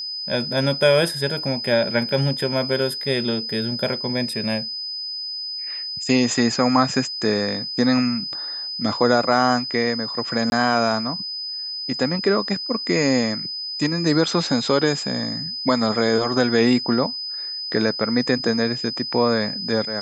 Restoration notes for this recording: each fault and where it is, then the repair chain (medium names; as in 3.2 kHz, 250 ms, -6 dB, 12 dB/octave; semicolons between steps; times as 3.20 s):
whine 5 kHz -27 dBFS
10.50–10.52 s: dropout 21 ms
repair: band-stop 5 kHz, Q 30; interpolate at 10.50 s, 21 ms